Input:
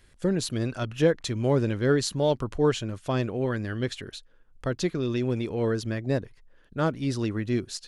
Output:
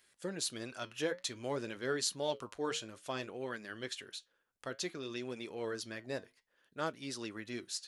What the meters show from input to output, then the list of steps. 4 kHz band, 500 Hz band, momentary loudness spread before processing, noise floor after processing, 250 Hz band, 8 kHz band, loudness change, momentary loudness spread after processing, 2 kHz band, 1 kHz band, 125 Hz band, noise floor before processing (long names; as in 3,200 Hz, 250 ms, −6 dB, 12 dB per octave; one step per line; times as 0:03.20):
−4.5 dB, −13.0 dB, 7 LU, −78 dBFS, −16.0 dB, −3.0 dB, −12.5 dB, 8 LU, −7.0 dB, −8.5 dB, −22.5 dB, −57 dBFS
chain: high-pass filter 320 Hz 6 dB per octave
spectral tilt +2 dB per octave
flanger 0.56 Hz, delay 4.4 ms, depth 5.8 ms, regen −75%
level −4 dB